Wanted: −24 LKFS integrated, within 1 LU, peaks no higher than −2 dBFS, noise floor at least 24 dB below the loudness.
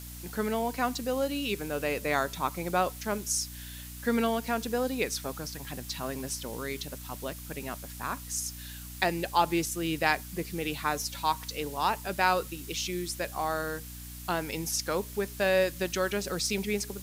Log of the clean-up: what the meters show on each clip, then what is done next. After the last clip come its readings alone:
mains hum 60 Hz; hum harmonics up to 300 Hz; level of the hum −42 dBFS; background noise floor −43 dBFS; target noise floor −55 dBFS; integrated loudness −31.0 LKFS; sample peak −9.5 dBFS; target loudness −24.0 LKFS
→ hum removal 60 Hz, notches 5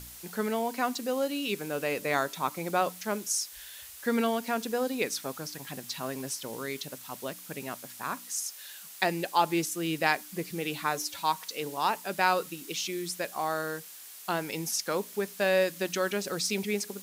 mains hum none found; background noise floor −47 dBFS; target noise floor −55 dBFS
→ broadband denoise 8 dB, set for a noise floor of −47 dBFS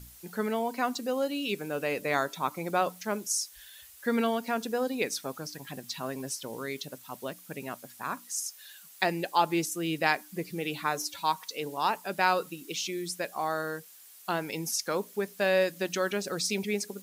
background noise floor −52 dBFS; target noise floor −55 dBFS
→ broadband denoise 6 dB, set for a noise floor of −52 dBFS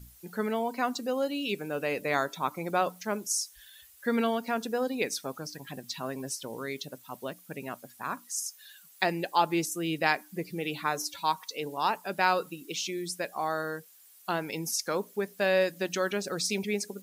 background noise floor −56 dBFS; integrated loudness −31.0 LKFS; sample peak −9.5 dBFS; target loudness −24.0 LKFS
→ level +7 dB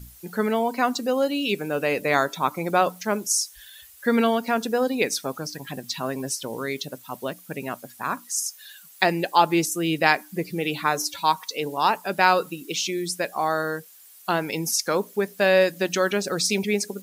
integrated loudness −24.0 LKFS; sample peak −2.5 dBFS; background noise floor −49 dBFS

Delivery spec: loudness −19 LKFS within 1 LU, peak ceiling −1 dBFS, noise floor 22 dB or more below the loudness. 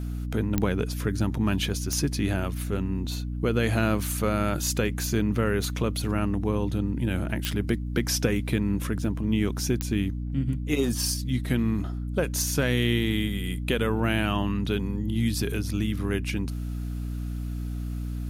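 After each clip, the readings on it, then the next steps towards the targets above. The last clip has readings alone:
number of clicks 4; mains hum 60 Hz; hum harmonics up to 300 Hz; level of the hum −29 dBFS; integrated loudness −27.5 LKFS; sample peak −9.5 dBFS; target loudness −19.0 LKFS
→ click removal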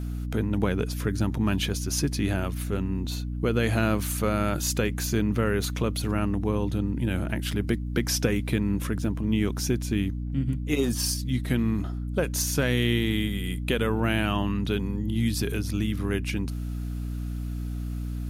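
number of clicks 0; mains hum 60 Hz; hum harmonics up to 300 Hz; level of the hum −29 dBFS
→ hum removal 60 Hz, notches 5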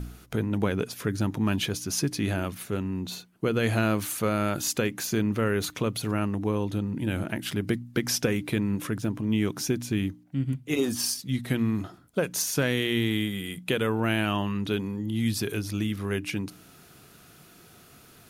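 mains hum none found; integrated loudness −28.0 LKFS; sample peak −11.0 dBFS; target loudness −19.0 LKFS
→ level +9 dB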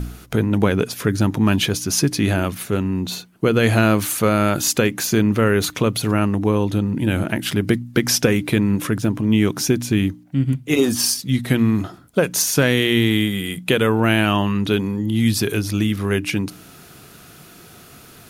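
integrated loudness −19.0 LKFS; sample peak −2.0 dBFS; background noise floor −45 dBFS

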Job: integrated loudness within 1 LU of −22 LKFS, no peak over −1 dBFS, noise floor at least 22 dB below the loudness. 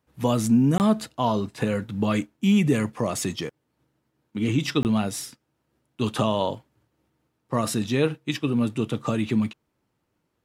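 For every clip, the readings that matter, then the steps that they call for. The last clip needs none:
number of dropouts 2; longest dropout 19 ms; integrated loudness −24.5 LKFS; sample peak −9.5 dBFS; target loudness −22.0 LKFS
→ repair the gap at 0:00.78/0:04.83, 19 ms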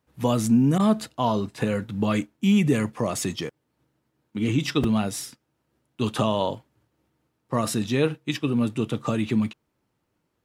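number of dropouts 0; integrated loudness −24.5 LKFS; sample peak −9.5 dBFS; target loudness −22.0 LKFS
→ level +2.5 dB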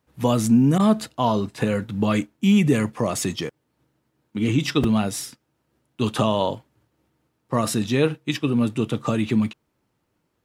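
integrated loudness −22.0 LKFS; sample peak −7.0 dBFS; background noise floor −73 dBFS

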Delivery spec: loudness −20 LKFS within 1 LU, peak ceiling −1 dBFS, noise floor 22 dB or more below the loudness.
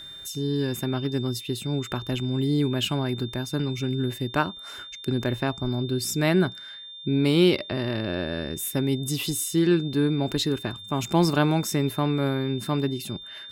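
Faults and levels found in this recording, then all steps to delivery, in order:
interfering tone 3,600 Hz; level of the tone −39 dBFS; integrated loudness −26.0 LKFS; sample peak −8.0 dBFS; target loudness −20.0 LKFS
→ notch filter 3,600 Hz, Q 30
level +6 dB

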